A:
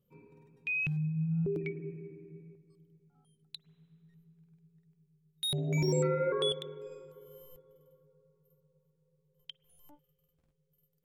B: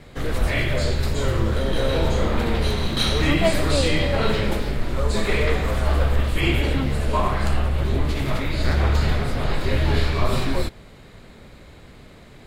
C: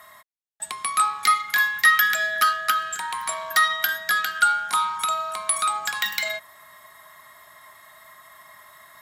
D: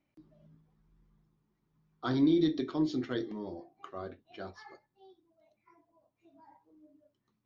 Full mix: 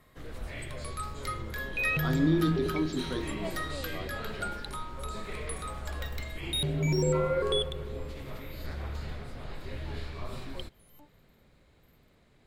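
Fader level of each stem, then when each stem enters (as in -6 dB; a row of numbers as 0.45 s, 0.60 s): +2.0 dB, -18.0 dB, -18.5 dB, -1.0 dB; 1.10 s, 0.00 s, 0.00 s, 0.00 s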